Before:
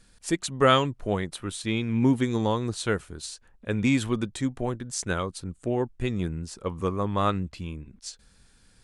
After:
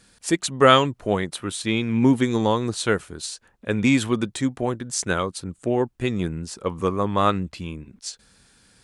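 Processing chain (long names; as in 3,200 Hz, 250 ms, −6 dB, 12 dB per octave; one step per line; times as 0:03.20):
high-pass filter 140 Hz 6 dB per octave
level +5.5 dB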